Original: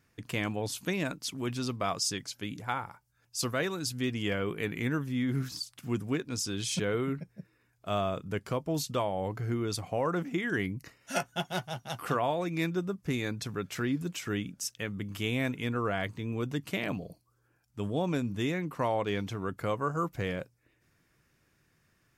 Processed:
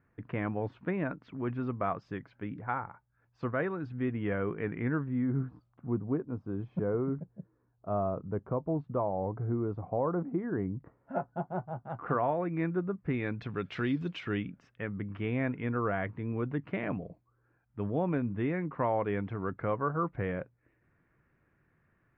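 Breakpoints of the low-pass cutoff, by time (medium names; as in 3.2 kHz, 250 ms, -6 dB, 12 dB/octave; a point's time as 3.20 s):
low-pass 24 dB/octave
5.00 s 1.8 kHz
5.51 s 1.1 kHz
11.67 s 1.1 kHz
12.27 s 1.8 kHz
12.88 s 1.8 kHz
13.98 s 4.2 kHz
14.67 s 2 kHz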